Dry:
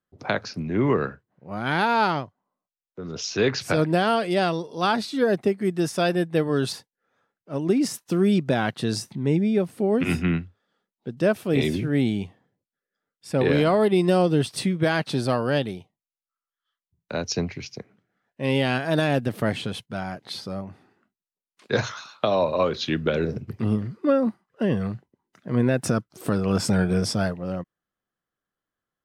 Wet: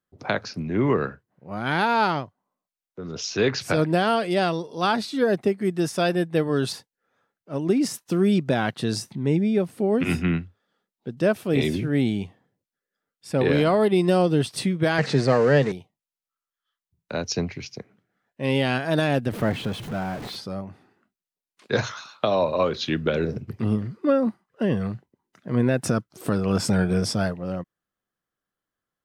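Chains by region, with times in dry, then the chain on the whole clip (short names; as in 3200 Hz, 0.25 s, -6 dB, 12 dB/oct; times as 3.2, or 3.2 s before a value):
14.98–15.72 zero-crossing step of -30.5 dBFS + speaker cabinet 120–7400 Hz, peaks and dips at 140 Hz +8 dB, 460 Hz +10 dB, 1900 Hz +9 dB, 3300 Hz -7 dB
19.32–20.36 zero-crossing step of -30.5 dBFS + upward compressor, threshold -29 dBFS + high shelf 3000 Hz -10.5 dB
whole clip: dry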